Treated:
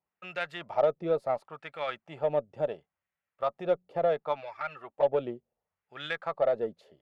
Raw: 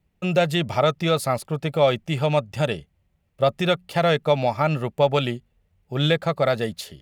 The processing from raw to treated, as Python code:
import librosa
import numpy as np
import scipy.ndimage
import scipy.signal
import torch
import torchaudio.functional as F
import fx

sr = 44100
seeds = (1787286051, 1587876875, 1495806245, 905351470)

y = fx.filter_lfo_bandpass(x, sr, shape='sine', hz=0.71, low_hz=440.0, high_hz=1700.0, q=1.9)
y = fx.env_flanger(y, sr, rest_ms=5.1, full_db=-17.0, at=(4.4, 5.12), fade=0.02)
y = fx.cheby_harmonics(y, sr, harmonics=(6, 7), levels_db=(-39, -33), full_scale_db=-10.5)
y = y * librosa.db_to_amplitude(-3.0)